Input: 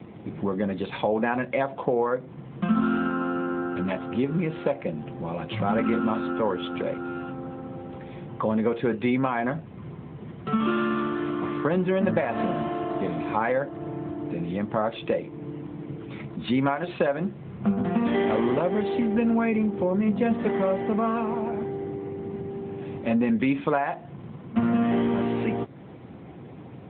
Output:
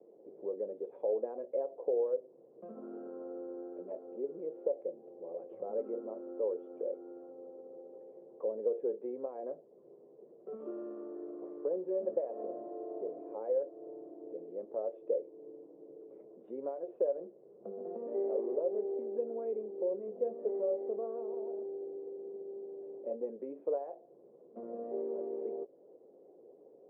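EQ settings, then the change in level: Butterworth band-pass 480 Hz, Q 2.4; -5.5 dB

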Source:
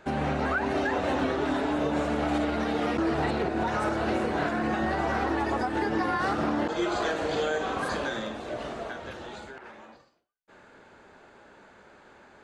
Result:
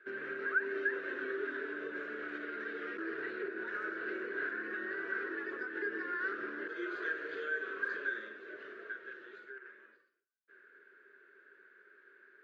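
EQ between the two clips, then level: two resonant band-passes 790 Hz, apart 2 oct; distance through air 150 m; tilt EQ +3.5 dB/octave; 0.0 dB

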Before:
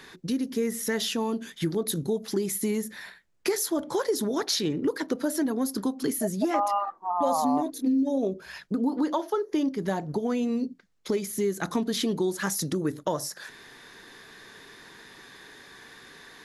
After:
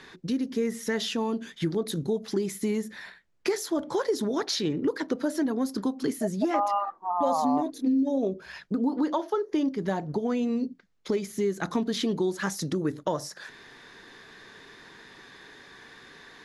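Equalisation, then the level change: distance through air 58 m; 0.0 dB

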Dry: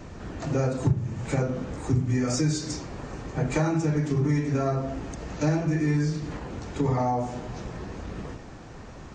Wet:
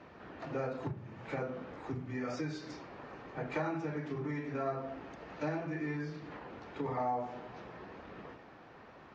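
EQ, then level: high-pass 710 Hz 6 dB/octave; distance through air 310 m; -3.0 dB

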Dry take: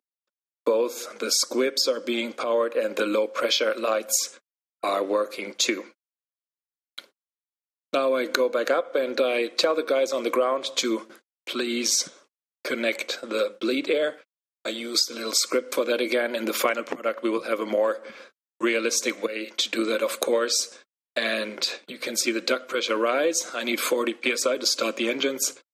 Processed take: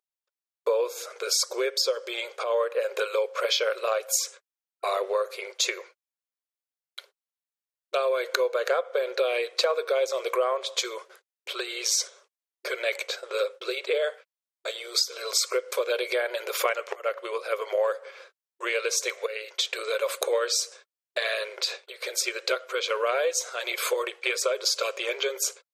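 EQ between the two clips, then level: brick-wall FIR high-pass 370 Hz; -2.0 dB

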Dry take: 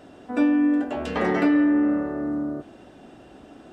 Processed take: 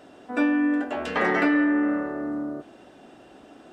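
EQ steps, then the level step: bass shelf 180 Hz -10.5 dB; dynamic bell 1.7 kHz, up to +6 dB, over -41 dBFS, Q 1.1; 0.0 dB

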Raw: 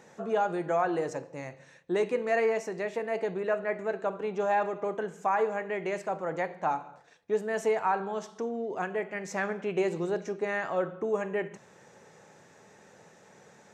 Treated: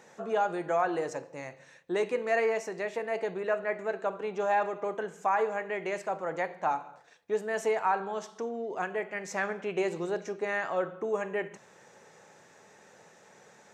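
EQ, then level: bass shelf 310 Hz -7.5 dB; +1.0 dB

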